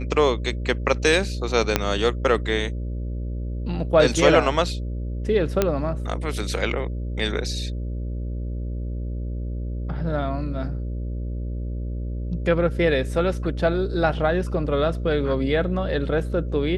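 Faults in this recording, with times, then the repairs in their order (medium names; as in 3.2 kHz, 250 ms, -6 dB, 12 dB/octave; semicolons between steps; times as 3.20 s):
buzz 60 Hz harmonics 10 -28 dBFS
1.76 s: pop -2 dBFS
5.62 s: pop -5 dBFS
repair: de-click; de-hum 60 Hz, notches 10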